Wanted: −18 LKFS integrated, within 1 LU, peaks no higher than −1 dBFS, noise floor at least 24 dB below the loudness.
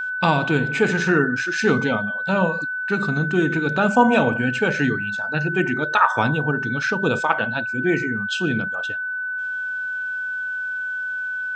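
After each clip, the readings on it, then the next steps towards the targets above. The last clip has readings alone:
interfering tone 1,500 Hz; level of the tone −24 dBFS; integrated loudness −21.0 LKFS; sample peak −3.0 dBFS; target loudness −18.0 LKFS
→ notch filter 1,500 Hz, Q 30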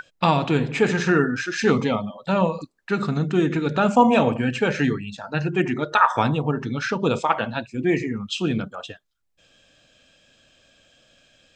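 interfering tone none found; integrated loudness −22.0 LKFS; sample peak −3.5 dBFS; target loudness −18.0 LKFS
→ level +4 dB
brickwall limiter −1 dBFS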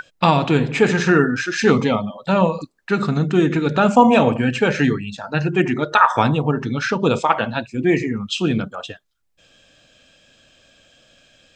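integrated loudness −18.0 LKFS; sample peak −1.0 dBFS; background noise floor −65 dBFS

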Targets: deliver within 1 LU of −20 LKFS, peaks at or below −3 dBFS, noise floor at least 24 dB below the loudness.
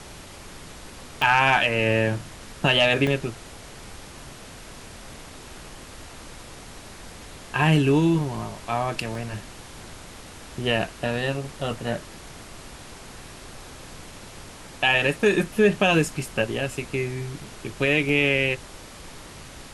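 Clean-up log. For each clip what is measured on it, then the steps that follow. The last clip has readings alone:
number of dropouts 6; longest dropout 1.4 ms; background noise floor −43 dBFS; target noise floor −47 dBFS; integrated loudness −23.0 LKFS; sample peak −6.5 dBFS; target loudness −20.0 LKFS
→ repair the gap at 0:01.22/0:03.07/0:09.15/0:11.74/0:17.44/0:18.09, 1.4 ms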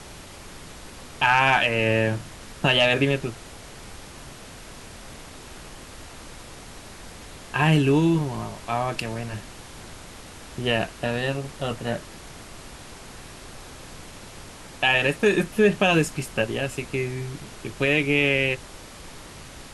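number of dropouts 0; background noise floor −43 dBFS; target noise floor −47 dBFS
→ noise reduction from a noise print 6 dB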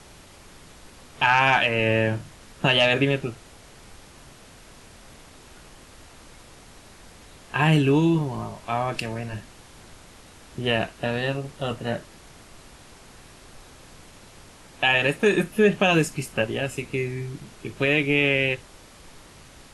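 background noise floor −49 dBFS; integrated loudness −23.0 LKFS; sample peak −6.5 dBFS; target loudness −20.0 LKFS
→ level +3 dB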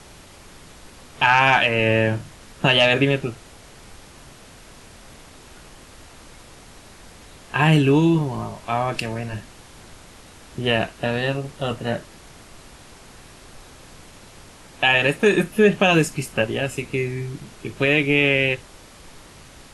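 integrated loudness −20.0 LKFS; sample peak −3.5 dBFS; background noise floor −46 dBFS

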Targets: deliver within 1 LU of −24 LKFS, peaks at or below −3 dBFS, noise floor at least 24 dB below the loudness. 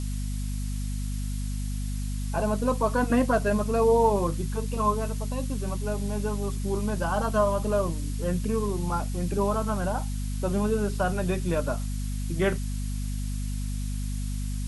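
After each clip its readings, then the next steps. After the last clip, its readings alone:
mains hum 50 Hz; hum harmonics up to 250 Hz; level of the hum −28 dBFS; background noise floor −30 dBFS; target noise floor −52 dBFS; integrated loudness −28.0 LKFS; sample peak −10.5 dBFS; target loudness −24.0 LKFS
→ mains-hum notches 50/100/150/200/250 Hz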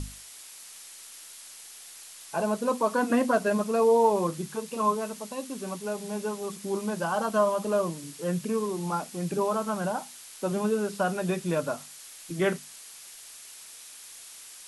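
mains hum none found; background noise floor −47 dBFS; target noise floor −53 dBFS
→ noise reduction from a noise print 6 dB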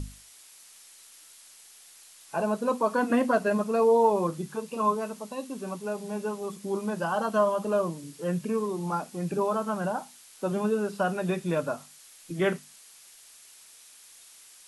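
background noise floor −53 dBFS; integrated loudness −28.5 LKFS; sample peak −11.5 dBFS; target loudness −24.0 LKFS
→ level +4.5 dB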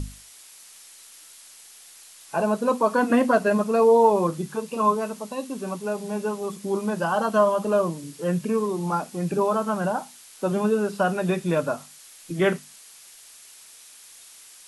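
integrated loudness −24.0 LKFS; sample peak −7.0 dBFS; background noise floor −48 dBFS

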